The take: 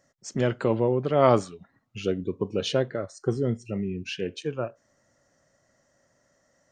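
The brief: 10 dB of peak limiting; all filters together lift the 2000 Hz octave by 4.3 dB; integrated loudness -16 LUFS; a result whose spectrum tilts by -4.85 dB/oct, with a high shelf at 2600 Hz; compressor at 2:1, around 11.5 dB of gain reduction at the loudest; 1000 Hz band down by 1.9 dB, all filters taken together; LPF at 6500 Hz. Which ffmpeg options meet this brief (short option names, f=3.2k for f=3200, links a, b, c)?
-af "lowpass=6.5k,equalizer=f=1k:t=o:g=-5,equalizer=f=2k:t=o:g=5,highshelf=f=2.6k:g=5,acompressor=threshold=-35dB:ratio=2,volume=22dB,alimiter=limit=-4dB:level=0:latency=1"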